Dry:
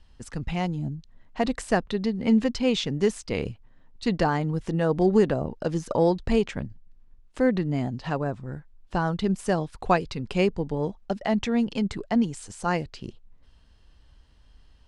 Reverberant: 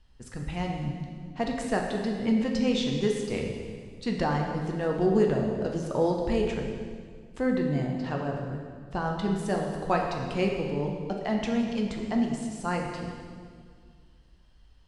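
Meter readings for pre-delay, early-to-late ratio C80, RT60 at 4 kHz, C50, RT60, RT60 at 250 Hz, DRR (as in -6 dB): 7 ms, 4.5 dB, 1.7 s, 3.0 dB, 1.9 s, 2.4 s, 0.5 dB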